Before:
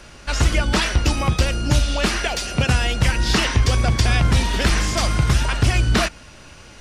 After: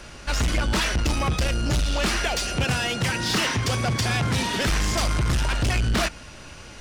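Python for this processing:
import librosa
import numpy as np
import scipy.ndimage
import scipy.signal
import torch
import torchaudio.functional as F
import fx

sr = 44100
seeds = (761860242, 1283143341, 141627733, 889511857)

y = fx.highpass(x, sr, hz=100.0, slope=24, at=(2.64, 4.67))
y = 10.0 ** (-19.5 / 20.0) * np.tanh(y / 10.0 ** (-19.5 / 20.0))
y = F.gain(torch.from_numpy(y), 1.0).numpy()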